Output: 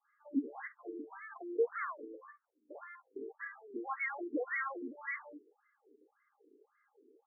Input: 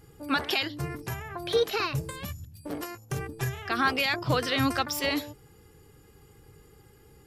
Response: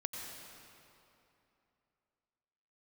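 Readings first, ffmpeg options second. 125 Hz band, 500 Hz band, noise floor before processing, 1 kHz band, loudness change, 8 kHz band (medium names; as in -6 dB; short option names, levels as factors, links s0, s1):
under -40 dB, -8.5 dB, -56 dBFS, -12.0 dB, -11.0 dB, under -40 dB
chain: -filter_complex "[0:a]equalizer=f=660:t=o:w=1.5:g=-8.5,adynamicsmooth=sensitivity=4.5:basefreq=2900,acrossover=split=1100[s0][s1];[s0]adelay=50[s2];[s2][s1]amix=inputs=2:normalize=0,afftfilt=real='re*between(b*sr/1024,320*pow(1600/320,0.5+0.5*sin(2*PI*1.8*pts/sr))/1.41,320*pow(1600/320,0.5+0.5*sin(2*PI*1.8*pts/sr))*1.41)':imag='im*between(b*sr/1024,320*pow(1600/320,0.5+0.5*sin(2*PI*1.8*pts/sr))/1.41,320*pow(1600/320,0.5+0.5*sin(2*PI*1.8*pts/sr))*1.41)':win_size=1024:overlap=0.75,volume=1.12"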